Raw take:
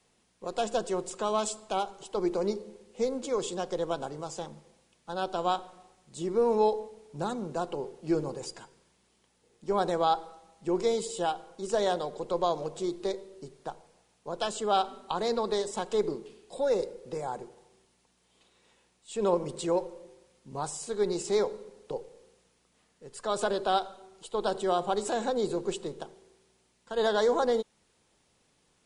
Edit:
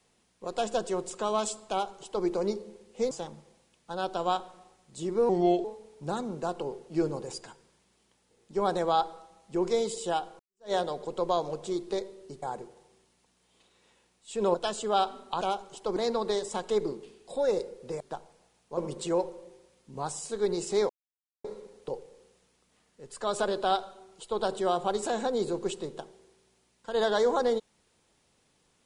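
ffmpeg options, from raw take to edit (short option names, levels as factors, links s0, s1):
-filter_complex "[0:a]asplit=12[s0][s1][s2][s3][s4][s5][s6][s7][s8][s9][s10][s11];[s0]atrim=end=3.112[s12];[s1]atrim=start=4.298:end=6.484[s13];[s2]atrim=start=6.48:end=6.77,asetpts=PTS-STARTPTS,asetrate=36162,aresample=44100,atrim=end_sample=15596,asetpts=PTS-STARTPTS[s14];[s3]atrim=start=6.766:end=11.52,asetpts=PTS-STARTPTS,afade=t=out:st=4.75:d=0.004:c=hsin[s15];[s4]atrim=start=11.52:end=13.552,asetpts=PTS-STARTPTS,afade=t=in:d=0.33:c=exp[s16];[s5]atrim=start=17.228:end=19.352[s17];[s6]atrim=start=14.318:end=15.192[s18];[s7]atrim=start=1.698:end=2.252[s19];[s8]atrim=start=15.188:end=17.232[s20];[s9]atrim=start=13.548:end=14.322[s21];[s10]atrim=start=19.348:end=21.47,asetpts=PTS-STARTPTS,afade=t=out:st=2.118:d=0.004:c=hsin,apad=pad_dur=0.55[s22];[s11]atrim=start=21.47,asetpts=PTS-STARTPTS,afade=t=in:d=0.004:c=hsin[s23];[s12][s13]acrossfade=d=0.004:c1=hsin:c2=hsin[s24];[s24][s14]acrossfade=d=0.004:c1=hsin:c2=hsin[s25];[s15][s16]concat=n=2:v=0:a=1[s26];[s25][s26]acrossfade=d=0.004:c1=hsin:c2=hsin[s27];[s27][s17]acrossfade=d=0.004:c1=hsin:c2=hsin[s28];[s28][s18]acrossfade=d=0.004:c1=hsin:c2=hsin[s29];[s29][s19]acrossfade=d=0.004:c1=hsin:c2=hsin[s30];[s30][s20]acrossfade=d=0.004:c1=hsin:c2=hsin[s31];[s31][s21]acrossfade=d=0.004:c1=hsin:c2=hsin[s32];[s22][s23]concat=n=2:v=0:a=1[s33];[s32][s33]acrossfade=d=0.004:c1=hsin:c2=hsin"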